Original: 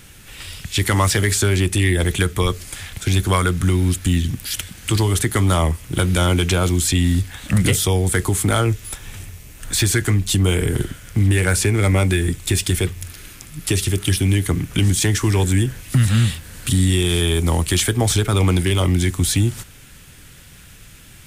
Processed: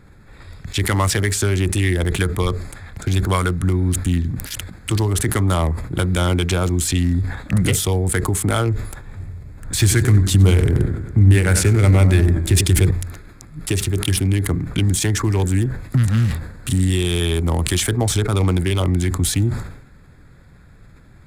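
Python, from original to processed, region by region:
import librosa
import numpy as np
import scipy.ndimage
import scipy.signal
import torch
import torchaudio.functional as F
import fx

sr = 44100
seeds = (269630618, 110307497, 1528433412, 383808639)

y = fx.chain(x, sr, fx.peak_eq(hz=82.0, db=5.5, octaves=2.4),
    fx.echo_warbled(ms=94, feedback_pct=61, rate_hz=2.8, cents=120, wet_db=-10.5), at=(9.17, 12.91))
y = fx.wiener(y, sr, points=15)
y = fx.sustainer(y, sr, db_per_s=74.0)
y = y * librosa.db_to_amplitude(-1.0)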